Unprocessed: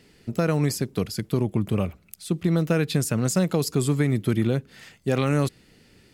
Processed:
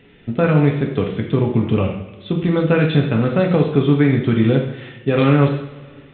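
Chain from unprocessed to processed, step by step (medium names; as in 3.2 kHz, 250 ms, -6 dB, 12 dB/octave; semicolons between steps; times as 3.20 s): two-slope reverb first 0.67 s, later 2.2 s, DRR 0 dB; trim +5 dB; µ-law 64 kbps 8 kHz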